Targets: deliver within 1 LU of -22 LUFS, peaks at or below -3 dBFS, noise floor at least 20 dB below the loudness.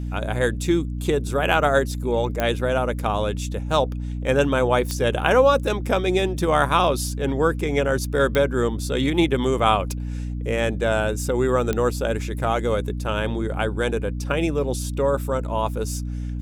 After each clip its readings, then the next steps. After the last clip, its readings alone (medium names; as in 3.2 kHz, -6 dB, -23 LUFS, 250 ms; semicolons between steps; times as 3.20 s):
clicks found 4; hum 60 Hz; highest harmonic 300 Hz; hum level -25 dBFS; loudness -22.5 LUFS; peak level -3.5 dBFS; loudness target -22.0 LUFS
-> de-click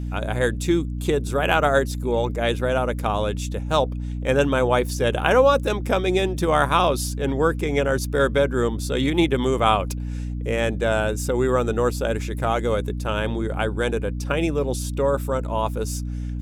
clicks found 0; hum 60 Hz; highest harmonic 300 Hz; hum level -25 dBFS
-> de-hum 60 Hz, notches 5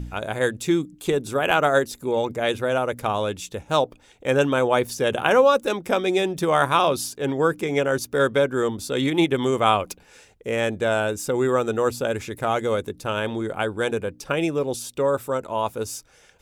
hum not found; loudness -23.0 LUFS; peak level -3.0 dBFS; loudness target -22.0 LUFS
-> trim +1 dB; peak limiter -3 dBFS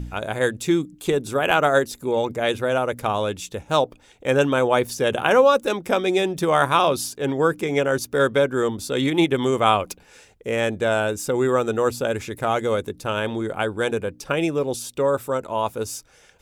loudness -22.0 LUFS; peak level -3.0 dBFS; noise floor -54 dBFS